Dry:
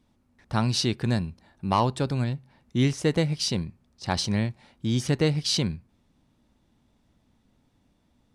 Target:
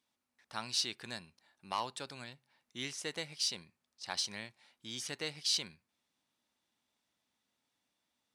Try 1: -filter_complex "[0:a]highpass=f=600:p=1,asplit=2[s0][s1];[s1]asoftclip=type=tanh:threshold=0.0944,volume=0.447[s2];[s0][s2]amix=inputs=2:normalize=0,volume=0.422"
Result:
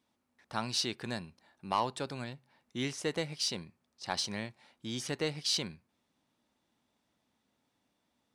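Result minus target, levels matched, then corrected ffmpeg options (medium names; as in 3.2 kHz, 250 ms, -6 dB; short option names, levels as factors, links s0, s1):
500 Hz band +7.0 dB
-filter_complex "[0:a]highpass=f=2200:p=1,asplit=2[s0][s1];[s1]asoftclip=type=tanh:threshold=0.0944,volume=0.447[s2];[s0][s2]amix=inputs=2:normalize=0,volume=0.422"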